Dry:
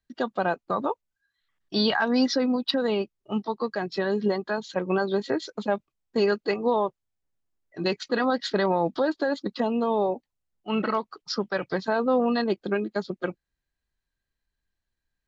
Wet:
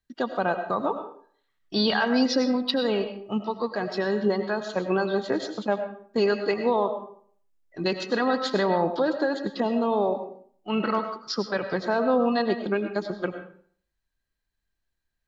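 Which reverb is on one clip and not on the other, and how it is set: algorithmic reverb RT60 0.53 s, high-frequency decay 0.7×, pre-delay 60 ms, DRR 7.5 dB

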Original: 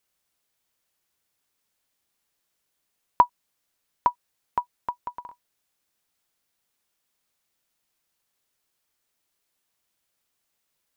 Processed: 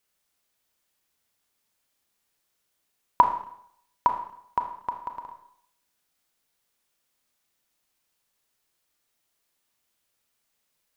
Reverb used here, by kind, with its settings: Schroeder reverb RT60 0.69 s, combs from 26 ms, DRR 5 dB

